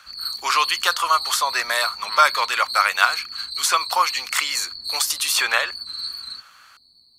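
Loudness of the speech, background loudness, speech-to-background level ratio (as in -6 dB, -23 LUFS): -20.5 LUFS, -28.0 LUFS, 7.5 dB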